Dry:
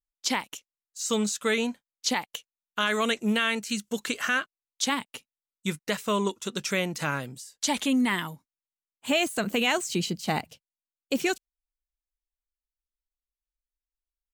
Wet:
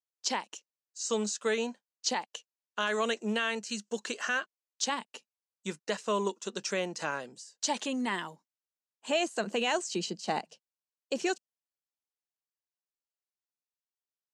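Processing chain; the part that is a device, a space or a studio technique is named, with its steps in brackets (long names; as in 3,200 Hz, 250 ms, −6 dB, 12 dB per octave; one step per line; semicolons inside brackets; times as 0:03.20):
television speaker (loudspeaker in its box 220–7,400 Hz, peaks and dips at 270 Hz −9 dB, 1,300 Hz −5 dB, 2,200 Hz −9 dB, 3,500 Hz −7 dB)
level −1.5 dB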